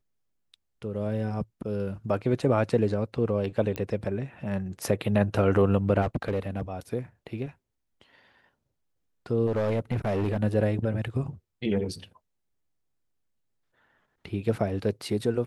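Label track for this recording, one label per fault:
3.760000	3.760000	pop -17 dBFS
6.010000	6.610000	clipped -22 dBFS
9.460000	10.370000	clipped -22.5 dBFS

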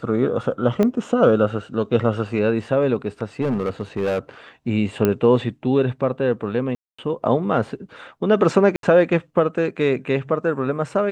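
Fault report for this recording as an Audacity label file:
0.830000	0.830000	pop -9 dBFS
3.410000	4.190000	clipped -17.5 dBFS
5.050000	5.050000	pop -6 dBFS
6.750000	6.990000	dropout 235 ms
8.760000	8.830000	dropout 72 ms

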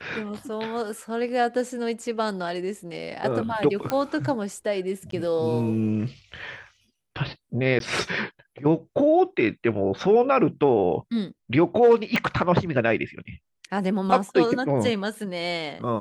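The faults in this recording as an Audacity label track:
3.900000	3.900000	pop -11 dBFS
5.110000	5.120000	dropout 13 ms
7.790000	7.800000	dropout 12 ms
12.160000	12.160000	pop -11 dBFS

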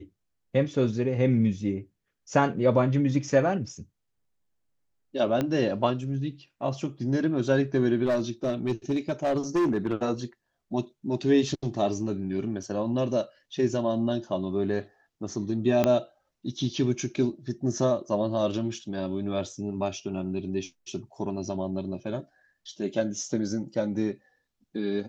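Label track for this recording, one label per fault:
5.410000	5.410000	pop -14 dBFS
8.050000	9.940000	clipped -20.5 dBFS
12.630000	12.630000	dropout 2.7 ms
15.840000	15.840000	pop -9 dBFS

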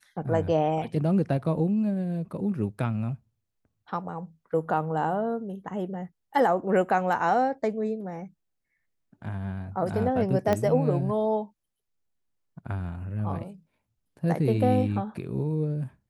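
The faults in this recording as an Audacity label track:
10.530000	10.530000	pop -12 dBFS

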